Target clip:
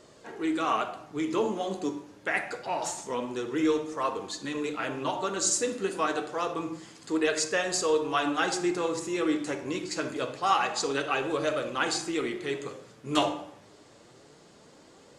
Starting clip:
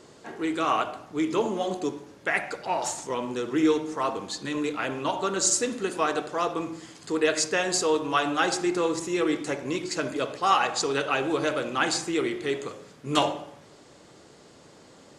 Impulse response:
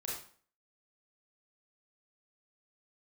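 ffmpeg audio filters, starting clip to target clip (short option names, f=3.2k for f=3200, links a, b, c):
-filter_complex "[0:a]flanger=delay=1.6:depth=8.7:regen=58:speed=0.26:shape=sinusoidal,asplit=2[a][b];[1:a]atrim=start_sample=2205[c];[b][c]afir=irnorm=-1:irlink=0,volume=-11dB[d];[a][d]amix=inputs=2:normalize=0"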